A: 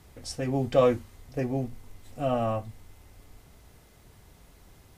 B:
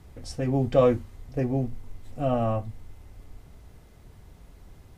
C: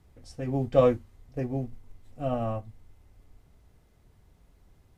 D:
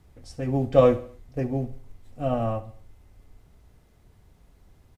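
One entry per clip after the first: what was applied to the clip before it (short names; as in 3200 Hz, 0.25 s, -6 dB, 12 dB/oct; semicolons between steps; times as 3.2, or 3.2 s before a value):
tilt -1.5 dB/oct
upward expander 1.5:1, over -35 dBFS
feedback echo 69 ms, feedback 43%, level -16 dB; gain +3.5 dB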